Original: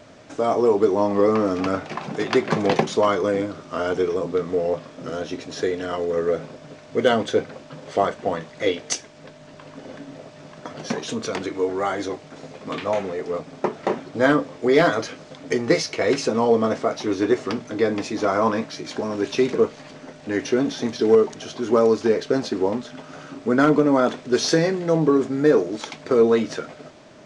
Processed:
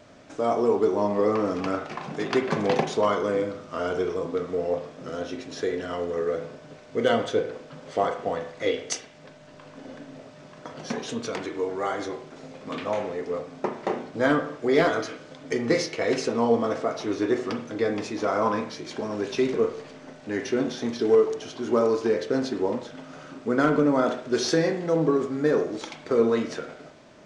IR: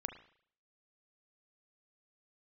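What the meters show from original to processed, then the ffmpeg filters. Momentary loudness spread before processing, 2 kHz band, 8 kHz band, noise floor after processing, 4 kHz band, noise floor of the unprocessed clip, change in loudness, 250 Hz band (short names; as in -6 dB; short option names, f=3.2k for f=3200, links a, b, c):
16 LU, -4.0 dB, -5.0 dB, -48 dBFS, -4.5 dB, -45 dBFS, -4.0 dB, -4.0 dB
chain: -filter_complex "[1:a]atrim=start_sample=2205[a];[0:a][a]afir=irnorm=-1:irlink=0,volume=-2.5dB"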